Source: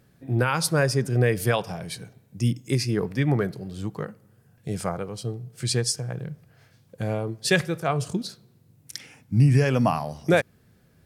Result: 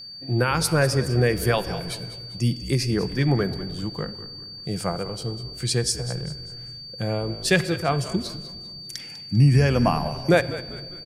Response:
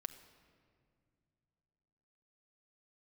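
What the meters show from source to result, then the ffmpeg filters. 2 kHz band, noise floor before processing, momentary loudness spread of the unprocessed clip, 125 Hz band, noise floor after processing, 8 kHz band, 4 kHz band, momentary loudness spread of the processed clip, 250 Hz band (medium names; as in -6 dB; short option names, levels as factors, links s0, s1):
+1.5 dB, -60 dBFS, 16 LU, +1.5 dB, -40 dBFS, +1.5 dB, +4.5 dB, 15 LU, +1.5 dB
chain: -filter_complex "[0:a]asplit=5[s0][s1][s2][s3][s4];[s1]adelay=198,afreqshift=-56,volume=0.188[s5];[s2]adelay=396,afreqshift=-112,volume=0.0776[s6];[s3]adelay=594,afreqshift=-168,volume=0.0316[s7];[s4]adelay=792,afreqshift=-224,volume=0.013[s8];[s0][s5][s6][s7][s8]amix=inputs=5:normalize=0,asplit=2[s9][s10];[1:a]atrim=start_sample=2205[s11];[s10][s11]afir=irnorm=-1:irlink=0,volume=1.88[s12];[s9][s12]amix=inputs=2:normalize=0,aeval=exprs='val(0)+0.0282*sin(2*PI*4600*n/s)':c=same,volume=0.501"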